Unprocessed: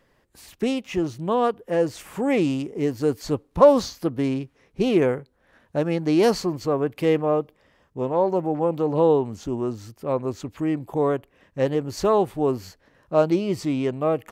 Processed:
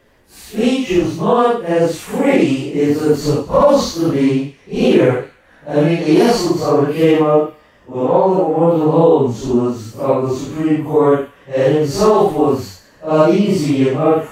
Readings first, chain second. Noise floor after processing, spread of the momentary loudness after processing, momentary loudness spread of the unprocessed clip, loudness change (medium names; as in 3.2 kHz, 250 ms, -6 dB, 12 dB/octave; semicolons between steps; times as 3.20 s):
-49 dBFS, 9 LU, 10 LU, +8.5 dB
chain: phase randomisation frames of 200 ms; band-stop 5.2 kHz, Q 26; flange 0.39 Hz, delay 3 ms, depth 2.9 ms, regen -78%; feedback echo behind a high-pass 100 ms, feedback 41%, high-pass 1.7 kHz, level -13.5 dB; loudness maximiser +15.5 dB; trim -1 dB